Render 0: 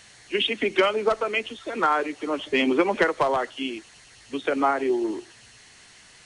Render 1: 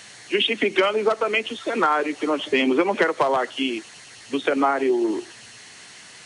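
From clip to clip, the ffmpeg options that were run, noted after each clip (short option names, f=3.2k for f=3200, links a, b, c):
-af "highpass=130,acompressor=threshold=-27dB:ratio=2,volume=7dB"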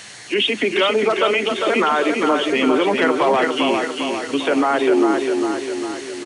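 -filter_complex "[0:a]alimiter=limit=-15.5dB:level=0:latency=1:release=11,asplit=2[a][b];[b]aecho=0:1:401|802|1203|1604|2005|2406|2807:0.596|0.328|0.18|0.0991|0.0545|0.03|0.0165[c];[a][c]amix=inputs=2:normalize=0,volume=5.5dB"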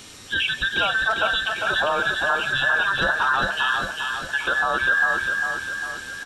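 -af "afftfilt=real='real(if(between(b,1,1012),(2*floor((b-1)/92)+1)*92-b,b),0)':imag='imag(if(between(b,1,1012),(2*floor((b-1)/92)+1)*92-b,b),0)*if(between(b,1,1012),-1,1)':win_size=2048:overlap=0.75,flanger=delay=9.1:depth=5.9:regen=86:speed=0.54:shape=triangular"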